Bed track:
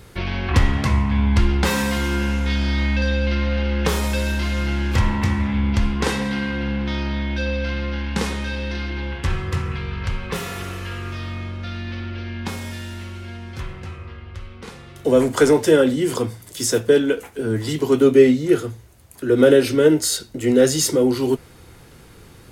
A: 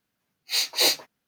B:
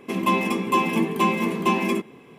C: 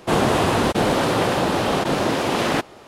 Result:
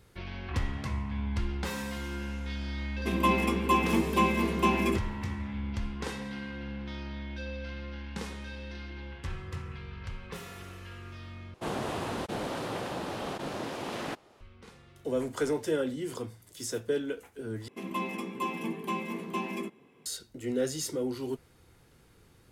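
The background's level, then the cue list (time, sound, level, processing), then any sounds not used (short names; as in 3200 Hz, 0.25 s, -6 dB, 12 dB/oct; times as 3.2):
bed track -15 dB
2.97 add B -4.5 dB
11.54 replace with C -15.5 dB
17.68 replace with B -12.5 dB
not used: A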